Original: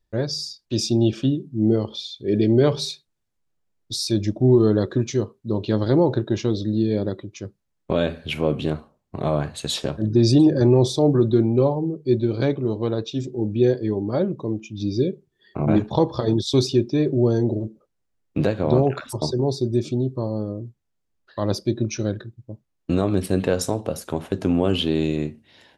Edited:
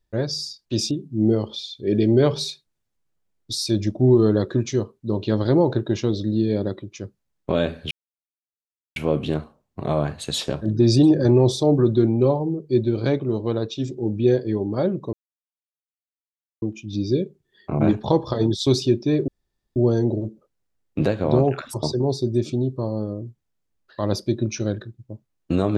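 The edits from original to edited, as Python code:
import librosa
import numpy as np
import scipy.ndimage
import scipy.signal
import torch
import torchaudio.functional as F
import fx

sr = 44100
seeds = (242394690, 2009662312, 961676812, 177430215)

y = fx.edit(x, sr, fx.cut(start_s=0.91, length_s=0.41),
    fx.insert_silence(at_s=8.32, length_s=1.05),
    fx.insert_silence(at_s=14.49, length_s=1.49),
    fx.insert_room_tone(at_s=17.15, length_s=0.48), tone=tone)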